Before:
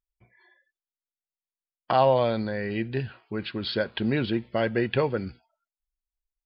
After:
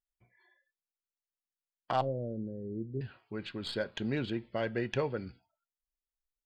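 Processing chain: tracing distortion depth 0.032 ms; 2.01–3.01 inverse Chebyshev low-pass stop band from 930 Hz, stop band 40 dB; reverb RT60 0.20 s, pre-delay 7 ms, DRR 18.5 dB; gain -8 dB

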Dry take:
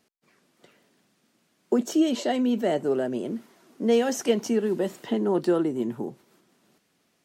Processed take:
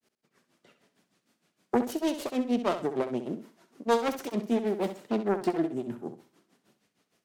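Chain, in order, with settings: self-modulated delay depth 0.54 ms; grains 0.154 s, grains 6.5/s, spray 16 ms, pitch spread up and down by 0 st; flutter echo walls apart 11.1 m, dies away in 0.38 s

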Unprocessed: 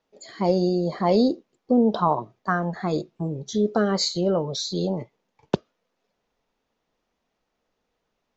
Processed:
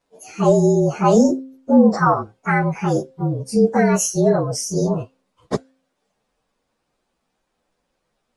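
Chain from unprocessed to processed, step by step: inharmonic rescaling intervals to 113%; de-hum 264.1 Hz, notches 2; gain +8 dB

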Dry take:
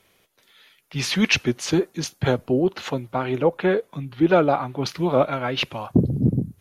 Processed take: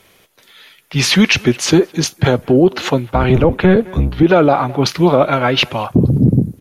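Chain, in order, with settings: 3.13–4.23 octaver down 1 oct, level +4 dB; speakerphone echo 0.21 s, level -23 dB; maximiser +12 dB; gain -1 dB

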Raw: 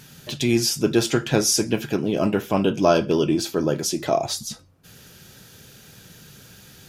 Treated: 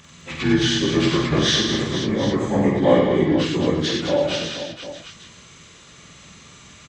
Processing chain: inharmonic rescaling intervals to 84%; harmoniser -12 st -8 dB, +5 st -17 dB; tapped delay 50/95/210/333/484/751 ms -5/-4.5/-6.5/-16.5/-9.5/-12.5 dB

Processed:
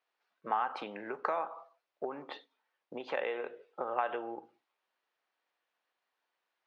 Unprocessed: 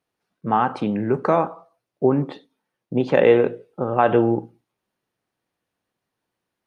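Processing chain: compressor 12:1, threshold -24 dBFS, peak gain reduction 15 dB; BPF 740–4200 Hz

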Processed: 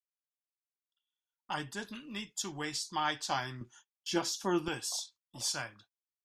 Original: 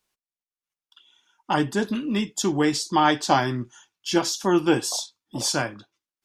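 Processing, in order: gate -47 dBFS, range -24 dB; bell 310 Hz -12.5 dB 2.6 oct, from 3.61 s -2.5 dB, from 4.68 s -13.5 dB; gain -8.5 dB

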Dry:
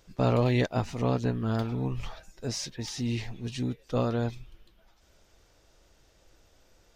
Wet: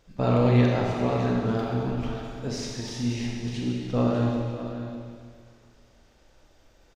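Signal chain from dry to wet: high shelf 5100 Hz -8.5 dB; echo 0.6 s -11 dB; Schroeder reverb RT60 2 s, combs from 29 ms, DRR -1.5 dB

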